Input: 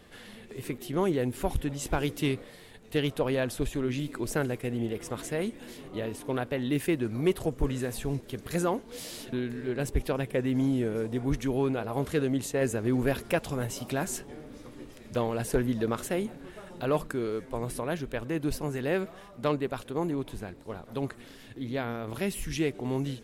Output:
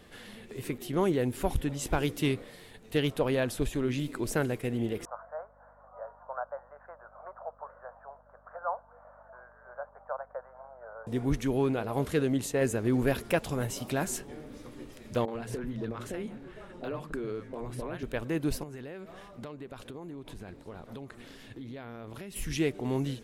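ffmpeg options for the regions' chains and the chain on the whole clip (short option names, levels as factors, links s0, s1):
-filter_complex "[0:a]asettb=1/sr,asplit=3[s0][s1][s2];[s0]atrim=end=5.054[s3];[s1]atrim=start=5.05:end=11.07,asetpts=PTS-STARTPTS,afade=t=in:d=0.004:c=qsin,afade=t=out:st=6.016:d=0.004:c=qsin,asuperpass=centerf=920:order=12:qfactor=1,aeval=exprs='val(0)+0.000631*(sin(2*PI*50*n/s)+sin(2*PI*2*50*n/s)/2+sin(2*PI*3*50*n/s)/3+sin(2*PI*4*50*n/s)/4+sin(2*PI*5*50*n/s)/5)':c=same[s4];[s2]atrim=start=11.066[s5];[s3][s4]acrossfade=d=0.004:c1=hsin:c2=qsin[s6];[s6][s5]acrossfade=d=0.004:c1=qsin:c2=hsin,asettb=1/sr,asplit=3[s7][s8][s9];[s7]atrim=end=15.254[s10];[s8]atrim=start=15.25:end=18.03,asetpts=PTS-STARTPTS,afade=t=in:d=0.004:c=qsin,afade=t=out:st=2.776:d=0.004:c=qsin,lowpass=f=2600:p=1,acompressor=threshold=0.0355:ratio=10:attack=3.2:release=140:knee=1:detection=peak,acrossover=split=170|700[s11][s12][s13];[s13]adelay=30[s14];[s11]adelay=100[s15];[s15][s12][s14]amix=inputs=3:normalize=0,atrim=end_sample=122598[s16];[s9]atrim=start=18.026[s17];[s10][s16]acrossfade=d=0.004:c1=hsin:c2=qsin[s18];[s18][s17]acrossfade=d=0.004:c1=qsin:c2=hsin,asettb=1/sr,asplit=3[s19][s20][s21];[s19]atrim=end=18.634[s22];[s20]atrim=start=18.63:end=22.36,asetpts=PTS-STARTPTS,afade=t=in:d=0.004:c=qsin,afade=t=out:st=3.726:d=0.004:c=qsin,acompressor=threshold=0.0126:ratio=12:attack=3.2:release=140:knee=1:detection=peak,highshelf=f=11000:g=-8[s23];[s21]atrim=start=22.356[s24];[s22][s23]acrossfade=d=0.004:c1=hsin:c2=qsin[s25];[s25][s24]acrossfade=d=0.004:c1=qsin:c2=hsin"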